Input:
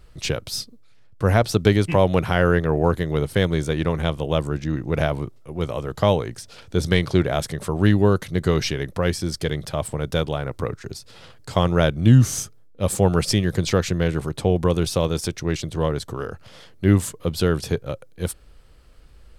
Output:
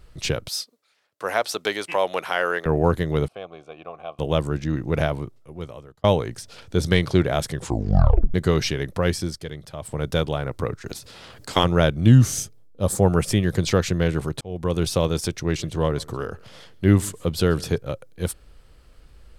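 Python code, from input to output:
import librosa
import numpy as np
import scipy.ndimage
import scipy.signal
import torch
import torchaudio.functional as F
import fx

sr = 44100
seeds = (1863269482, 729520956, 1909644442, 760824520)

y = fx.highpass(x, sr, hz=620.0, slope=12, at=(0.48, 2.66))
y = fx.vowel_filter(y, sr, vowel='a', at=(3.28, 4.19))
y = fx.spec_clip(y, sr, under_db=17, at=(10.86, 11.63), fade=0.02)
y = fx.peak_eq(y, sr, hz=fx.line((12.31, 950.0), (13.42, 5800.0)), db=-10.5, octaves=0.7, at=(12.31, 13.42), fade=0.02)
y = fx.echo_single(y, sr, ms=137, db=-23.5, at=(15.42, 17.78))
y = fx.edit(y, sr, fx.fade_out_span(start_s=4.93, length_s=1.11),
    fx.tape_stop(start_s=7.52, length_s=0.82),
    fx.fade_down_up(start_s=9.21, length_s=0.79, db=-9.5, fade_s=0.19),
    fx.fade_in_span(start_s=14.41, length_s=0.45), tone=tone)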